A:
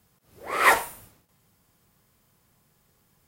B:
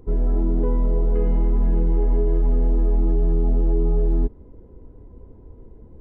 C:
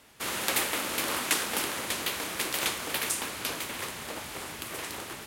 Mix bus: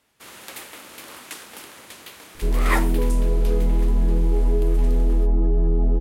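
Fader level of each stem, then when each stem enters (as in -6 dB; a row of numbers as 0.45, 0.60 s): -5.5, 0.0, -10.0 dB; 2.05, 2.35, 0.00 s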